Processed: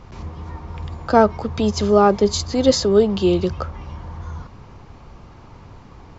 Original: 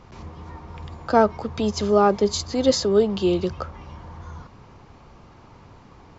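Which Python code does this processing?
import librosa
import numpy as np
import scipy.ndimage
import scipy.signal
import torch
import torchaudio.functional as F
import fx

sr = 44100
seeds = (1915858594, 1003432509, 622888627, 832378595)

y = fx.low_shelf(x, sr, hz=93.0, db=7.5)
y = y * 10.0 ** (3.0 / 20.0)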